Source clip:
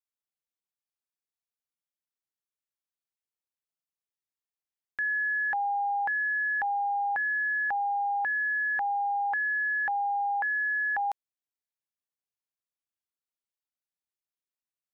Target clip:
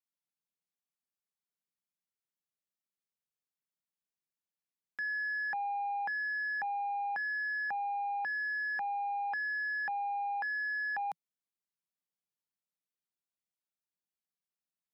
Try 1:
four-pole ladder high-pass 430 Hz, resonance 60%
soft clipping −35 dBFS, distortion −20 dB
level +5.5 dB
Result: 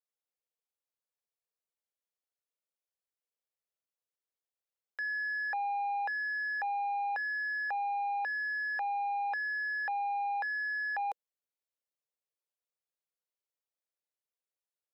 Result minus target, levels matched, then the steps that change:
500 Hz band +3.0 dB
change: four-pole ladder high-pass 150 Hz, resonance 60%

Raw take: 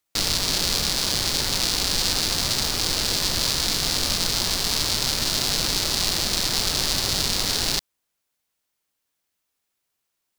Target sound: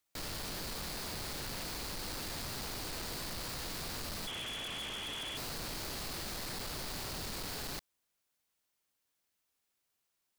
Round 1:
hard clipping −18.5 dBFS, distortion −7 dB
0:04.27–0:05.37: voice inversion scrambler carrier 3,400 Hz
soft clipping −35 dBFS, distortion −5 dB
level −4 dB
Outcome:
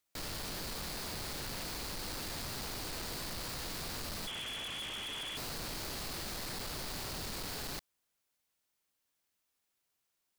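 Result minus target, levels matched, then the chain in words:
hard clipping: distortion +31 dB
hard clipping −6.5 dBFS, distortion −38 dB
0:04.27–0:05.37: voice inversion scrambler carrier 3,400 Hz
soft clipping −35 dBFS, distortion −1 dB
level −4 dB

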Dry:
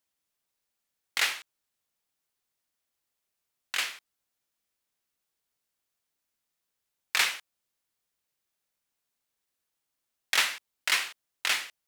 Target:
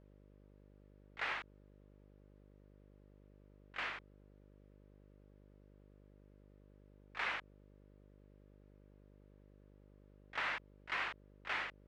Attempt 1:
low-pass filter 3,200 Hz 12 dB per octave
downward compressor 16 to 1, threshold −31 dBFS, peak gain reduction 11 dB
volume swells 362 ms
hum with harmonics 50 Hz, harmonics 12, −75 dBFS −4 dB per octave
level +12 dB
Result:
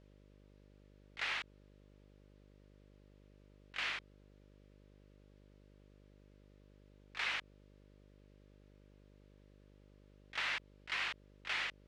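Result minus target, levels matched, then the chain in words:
4,000 Hz band +4.5 dB
low-pass filter 1,500 Hz 12 dB per octave
downward compressor 16 to 1, threshold −31 dBFS, peak gain reduction 6 dB
volume swells 362 ms
hum with harmonics 50 Hz, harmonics 12, −75 dBFS −4 dB per octave
level +12 dB

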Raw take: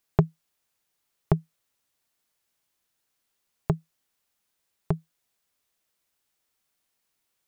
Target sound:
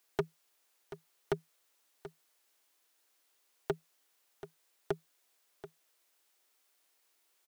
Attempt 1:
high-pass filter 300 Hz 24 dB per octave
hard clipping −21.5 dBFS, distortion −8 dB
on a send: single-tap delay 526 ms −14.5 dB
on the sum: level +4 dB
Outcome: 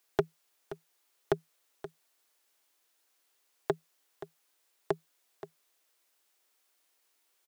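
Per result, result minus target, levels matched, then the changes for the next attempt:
echo 207 ms early; hard clipping: distortion −5 dB
change: single-tap delay 733 ms −14.5 dB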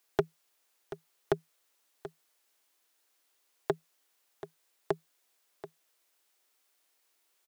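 hard clipping: distortion −5 dB
change: hard clipping −28.5 dBFS, distortion −4 dB

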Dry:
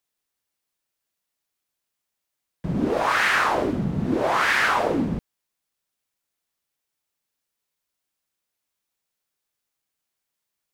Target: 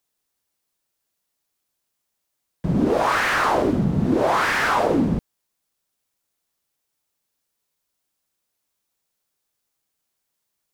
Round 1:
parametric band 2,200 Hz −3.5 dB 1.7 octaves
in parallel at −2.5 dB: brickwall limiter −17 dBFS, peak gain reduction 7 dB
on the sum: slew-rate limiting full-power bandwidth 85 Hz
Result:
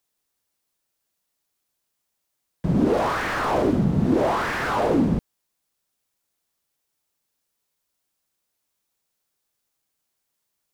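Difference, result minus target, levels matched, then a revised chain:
slew-rate limiting: distortion +9 dB
parametric band 2,200 Hz −3.5 dB 1.7 octaves
in parallel at −2.5 dB: brickwall limiter −17 dBFS, peak gain reduction 7 dB
on the sum: slew-rate limiting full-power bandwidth 218.5 Hz

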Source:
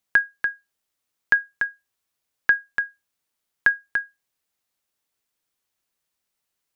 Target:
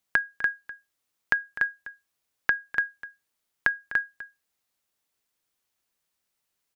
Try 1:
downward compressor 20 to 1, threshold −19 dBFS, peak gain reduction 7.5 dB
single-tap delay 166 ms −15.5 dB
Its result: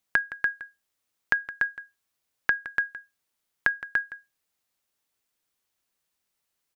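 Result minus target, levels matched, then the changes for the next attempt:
echo 85 ms early
change: single-tap delay 251 ms −15.5 dB

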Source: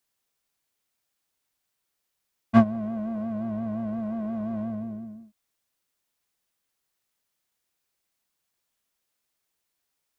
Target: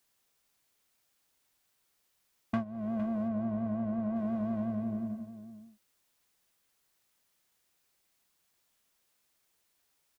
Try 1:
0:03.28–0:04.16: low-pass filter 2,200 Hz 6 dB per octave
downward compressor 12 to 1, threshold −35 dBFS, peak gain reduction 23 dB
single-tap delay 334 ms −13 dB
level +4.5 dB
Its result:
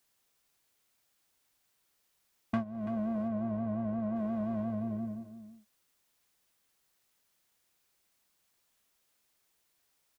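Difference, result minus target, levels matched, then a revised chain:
echo 125 ms early
0:03.28–0:04.16: low-pass filter 2,200 Hz 6 dB per octave
downward compressor 12 to 1, threshold −35 dBFS, peak gain reduction 23 dB
single-tap delay 459 ms −13 dB
level +4.5 dB

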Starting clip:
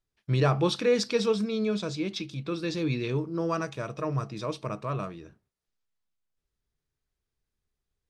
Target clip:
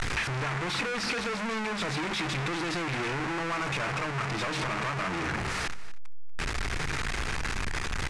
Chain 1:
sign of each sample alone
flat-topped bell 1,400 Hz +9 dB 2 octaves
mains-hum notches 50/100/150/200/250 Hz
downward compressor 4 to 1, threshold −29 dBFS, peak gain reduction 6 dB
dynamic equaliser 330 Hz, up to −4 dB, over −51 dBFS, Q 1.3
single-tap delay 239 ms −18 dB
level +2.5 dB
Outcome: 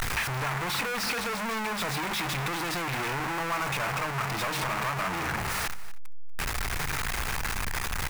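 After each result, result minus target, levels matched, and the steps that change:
8,000 Hz band +3.5 dB; 250 Hz band −3.5 dB
add after sign of each sample alone: Bessel low-pass filter 6,300 Hz, order 8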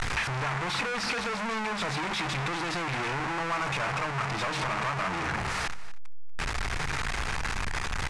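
250 Hz band −3.0 dB
change: dynamic equaliser 870 Hz, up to −4 dB, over −51 dBFS, Q 1.3

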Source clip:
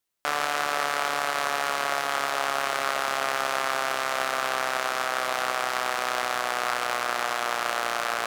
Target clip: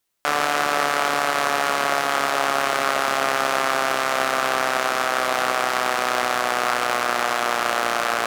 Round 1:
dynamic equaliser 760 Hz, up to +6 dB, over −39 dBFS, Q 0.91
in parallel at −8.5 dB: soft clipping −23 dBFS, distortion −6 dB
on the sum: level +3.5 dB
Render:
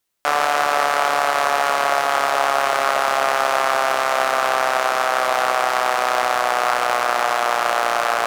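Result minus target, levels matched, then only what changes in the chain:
250 Hz band −7.0 dB
change: dynamic equaliser 250 Hz, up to +6 dB, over −39 dBFS, Q 0.91

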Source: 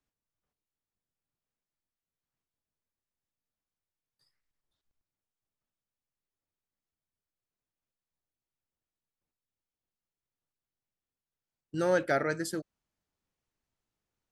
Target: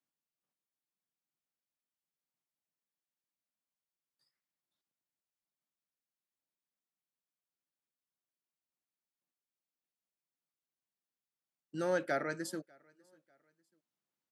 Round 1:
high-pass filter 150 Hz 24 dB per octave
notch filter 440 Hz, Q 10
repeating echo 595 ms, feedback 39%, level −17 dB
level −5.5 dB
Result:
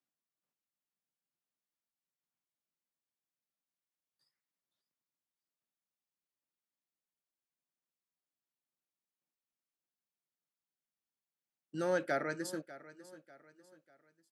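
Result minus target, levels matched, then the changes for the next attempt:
echo-to-direct +12 dB
change: repeating echo 595 ms, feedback 39%, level −29 dB

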